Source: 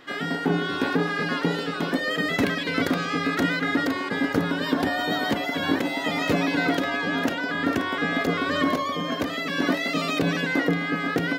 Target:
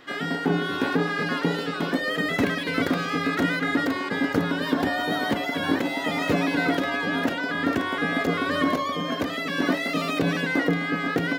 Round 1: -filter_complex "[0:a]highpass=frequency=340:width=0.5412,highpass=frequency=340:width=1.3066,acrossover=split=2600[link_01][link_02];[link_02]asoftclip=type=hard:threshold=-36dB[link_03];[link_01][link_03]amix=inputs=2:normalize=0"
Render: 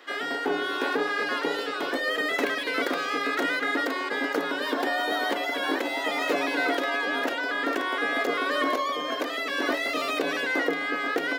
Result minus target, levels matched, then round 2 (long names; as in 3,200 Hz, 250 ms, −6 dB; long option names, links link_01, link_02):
250 Hz band −6.0 dB
-filter_complex "[0:a]acrossover=split=2600[link_01][link_02];[link_02]asoftclip=type=hard:threshold=-36dB[link_03];[link_01][link_03]amix=inputs=2:normalize=0"